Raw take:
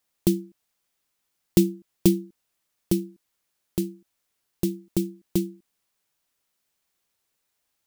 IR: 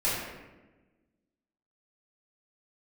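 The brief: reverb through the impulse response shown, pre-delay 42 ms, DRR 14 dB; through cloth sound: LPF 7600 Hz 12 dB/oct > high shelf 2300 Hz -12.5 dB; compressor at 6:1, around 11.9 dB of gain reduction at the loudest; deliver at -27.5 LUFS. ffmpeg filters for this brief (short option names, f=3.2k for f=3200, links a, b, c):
-filter_complex "[0:a]acompressor=threshold=-26dB:ratio=6,asplit=2[a][b];[1:a]atrim=start_sample=2205,adelay=42[c];[b][c]afir=irnorm=-1:irlink=0,volume=-25dB[d];[a][d]amix=inputs=2:normalize=0,lowpass=7.6k,highshelf=f=2.3k:g=-12.5,volume=9.5dB"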